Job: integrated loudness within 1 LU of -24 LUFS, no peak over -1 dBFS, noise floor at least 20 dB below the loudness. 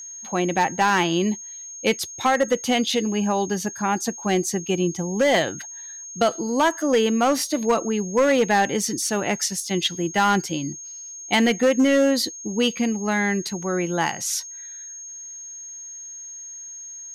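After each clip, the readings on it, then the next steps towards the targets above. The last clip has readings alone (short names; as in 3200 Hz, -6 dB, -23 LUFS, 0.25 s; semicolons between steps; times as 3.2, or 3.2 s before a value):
clipped 0.8%; flat tops at -12.5 dBFS; steady tone 6500 Hz; tone level -35 dBFS; loudness -22.0 LUFS; peak -12.5 dBFS; loudness target -24.0 LUFS
-> clip repair -12.5 dBFS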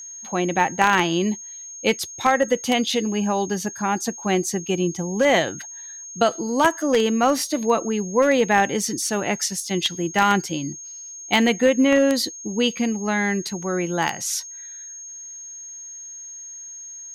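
clipped 0.0%; steady tone 6500 Hz; tone level -35 dBFS
-> notch 6500 Hz, Q 30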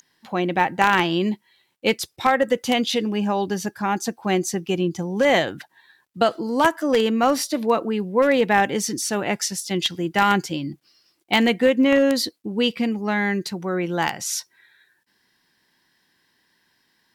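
steady tone none; loudness -21.5 LUFS; peak -3.5 dBFS; loudness target -24.0 LUFS
-> gain -2.5 dB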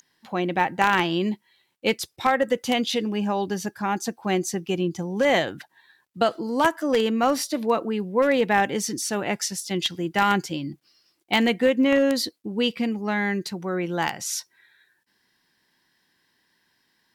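loudness -24.0 LUFS; peak -6.0 dBFS; noise floor -70 dBFS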